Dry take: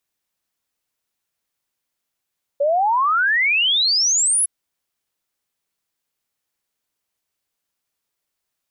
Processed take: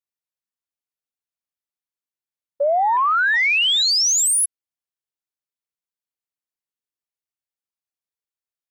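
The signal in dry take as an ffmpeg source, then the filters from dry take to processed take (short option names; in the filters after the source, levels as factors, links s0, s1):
-f lavfi -i "aevalsrc='0.188*clip(min(t,1.86-t)/0.01,0,1)*sin(2*PI*550*1.86/log(11000/550)*(exp(log(11000/550)*t/1.86)-1))':d=1.86:s=44100"
-af "afwtdn=0.0251"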